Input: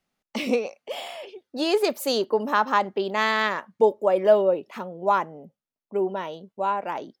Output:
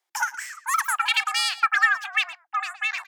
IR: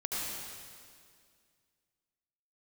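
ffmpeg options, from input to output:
-filter_complex "[0:a]lowshelf=frequency=110:gain=-7.5,afreqshift=140,asoftclip=type=tanh:threshold=-6dB,asplit=2[link_01][link_02];[link_02]adelay=270,highpass=300,lowpass=3400,asoftclip=type=hard:threshold=-16dB,volume=-16dB[link_03];[link_01][link_03]amix=inputs=2:normalize=0,asetrate=103194,aresample=44100"

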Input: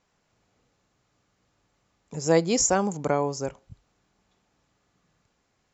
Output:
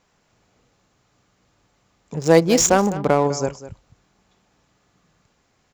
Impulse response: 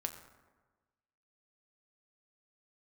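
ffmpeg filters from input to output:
-filter_complex "[0:a]aecho=1:1:203:0.188,asettb=1/sr,asplit=3[link_01][link_02][link_03];[link_01]atrim=end=2.144[link_04];[link_02]atrim=start=2.14:end=3.27,asetpts=PTS-STARTPTS,afade=type=in:duration=0.004:curve=qsin,afade=type=out:start_time=1.126:duration=0.004:curve=qsin,adynamicsmooth=sensitivity=6.5:basefreq=1200[link_05];[link_03]atrim=start=3.266[link_06];[link_04][link_05]acrossfade=duration=0.004:curve1=hsin:curve2=qsin[link_07];[link_07][link_06]acrossfade=duration=0.004:curve1=qsin:curve2=hsin,volume=7dB"

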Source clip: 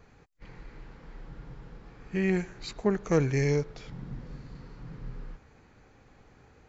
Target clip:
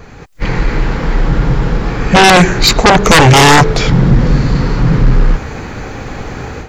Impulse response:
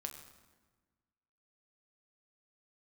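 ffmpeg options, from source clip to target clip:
-af "dynaudnorm=framelen=200:gausssize=3:maxgain=12dB,aeval=exprs='0.75*sin(PI/2*7.08*val(0)/0.75)':channel_layout=same,volume=1dB"

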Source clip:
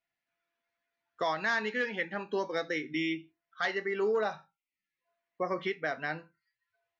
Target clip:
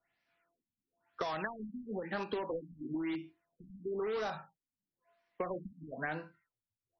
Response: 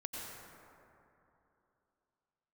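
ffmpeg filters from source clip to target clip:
-filter_complex "[0:a]acrossover=split=200|1900[link_01][link_02][link_03];[link_01]acompressor=threshold=-54dB:ratio=4[link_04];[link_02]acompressor=threshold=-35dB:ratio=4[link_05];[link_03]acompressor=threshold=-50dB:ratio=4[link_06];[link_04][link_05][link_06]amix=inputs=3:normalize=0,asplit=2[link_07][link_08];[link_08]aeval=exprs='(mod(56.2*val(0)+1,2)-1)/56.2':channel_layout=same,volume=-7.5dB[link_09];[link_07][link_09]amix=inputs=2:normalize=0,acompressor=threshold=-39dB:ratio=3,afftfilt=real='re*lt(b*sr/1024,260*pow(6200/260,0.5+0.5*sin(2*PI*1*pts/sr)))':imag='im*lt(b*sr/1024,260*pow(6200/260,0.5+0.5*sin(2*PI*1*pts/sr)))':win_size=1024:overlap=0.75,volume=5dB"

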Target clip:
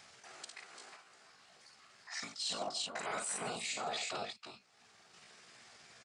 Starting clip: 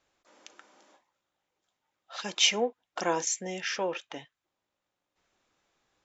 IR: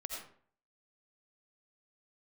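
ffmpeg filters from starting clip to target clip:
-af "afftfilt=real='hypot(re,im)*cos(2*PI*random(0))':imag='hypot(re,im)*sin(2*PI*random(1))':win_size=512:overlap=0.75,acompressor=mode=upward:threshold=-53dB:ratio=2.5,crystalizer=i=1.5:c=0,aecho=1:1:55|147|345|375:0.562|0.158|0.355|0.141,asetrate=60591,aresample=44100,atempo=0.727827,asoftclip=type=tanh:threshold=-14.5dB,highpass=110,equalizer=frequency=300:width_type=q:width=4:gain=-9,equalizer=frequency=520:width_type=q:width=4:gain=-7,equalizer=frequency=960:width_type=q:width=4:gain=-7,equalizer=frequency=3300:width_type=q:width=4:gain=-3,lowpass=frequency=7000:width=0.5412,lowpass=frequency=7000:width=1.3066,areverse,acompressor=threshold=-43dB:ratio=20,areverse,volume=7.5dB"

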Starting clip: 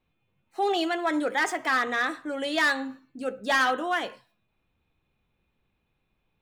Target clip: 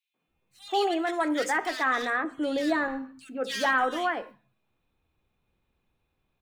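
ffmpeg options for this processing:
ffmpeg -i in.wav -filter_complex "[0:a]asettb=1/sr,asplit=3[link_01][link_02][link_03];[link_01]atrim=end=2.104[link_04];[link_02]atrim=start=2.1:end=2.74,asetpts=PTS-STARTPTS,afade=type=in:duration=0.004:curve=qsin,afade=type=out:start_time=0.636:duration=0.004:curve=qsin,tiltshelf=frequency=770:gain=8[link_05];[link_03]atrim=start=2.736[link_06];[link_04][link_05]acrossfade=duration=0.004:curve1=hsin:curve2=qsin[link_07];[link_07][link_06]acrossfade=duration=0.004:curve1=qsin:curve2=hsin,acrossover=split=160|2400[link_08][link_09][link_10];[link_09]adelay=140[link_11];[link_08]adelay=280[link_12];[link_12][link_11][link_10]amix=inputs=3:normalize=0" out.wav

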